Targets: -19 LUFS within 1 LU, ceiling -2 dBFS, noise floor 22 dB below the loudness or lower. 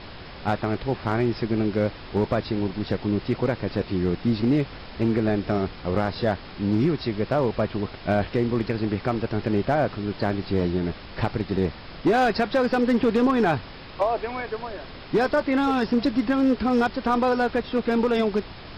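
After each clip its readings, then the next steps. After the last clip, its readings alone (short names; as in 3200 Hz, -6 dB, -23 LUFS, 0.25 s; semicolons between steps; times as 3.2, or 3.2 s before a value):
clipped 1.1%; flat tops at -14.5 dBFS; noise floor -41 dBFS; noise floor target -47 dBFS; loudness -24.5 LUFS; peak -14.5 dBFS; loudness target -19.0 LUFS
-> clip repair -14.5 dBFS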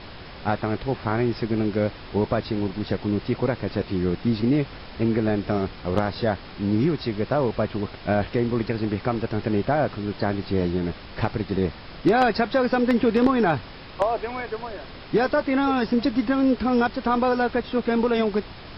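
clipped 0.0%; noise floor -41 dBFS; noise floor target -46 dBFS
-> noise print and reduce 6 dB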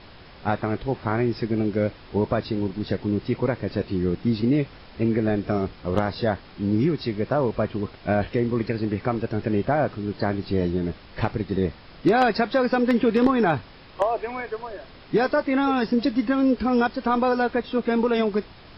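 noise floor -47 dBFS; loudness -24.0 LUFS; peak -5.5 dBFS; loudness target -19.0 LUFS
-> gain +5 dB; limiter -2 dBFS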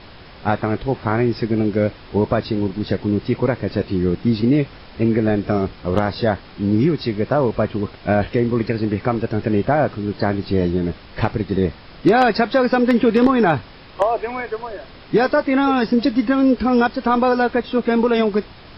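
loudness -19.5 LUFS; peak -2.0 dBFS; noise floor -42 dBFS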